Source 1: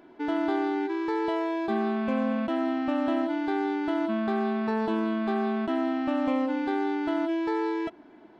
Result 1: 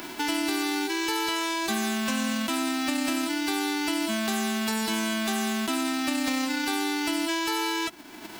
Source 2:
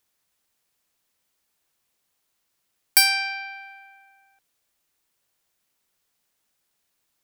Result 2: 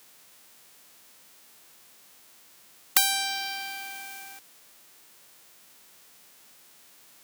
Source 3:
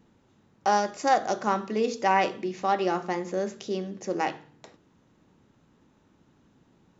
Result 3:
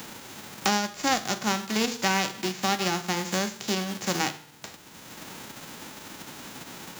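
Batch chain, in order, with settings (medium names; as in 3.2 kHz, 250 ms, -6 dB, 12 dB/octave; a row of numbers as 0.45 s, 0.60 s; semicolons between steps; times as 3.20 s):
formants flattened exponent 0.3; three bands compressed up and down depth 70%; normalise loudness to -27 LUFS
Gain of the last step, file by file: -0.5 dB, -1.0 dB, 0.0 dB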